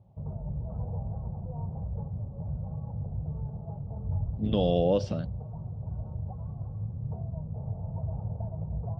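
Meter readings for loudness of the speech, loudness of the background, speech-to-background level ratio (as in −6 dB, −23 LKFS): −28.0 LKFS, −36.5 LKFS, 8.5 dB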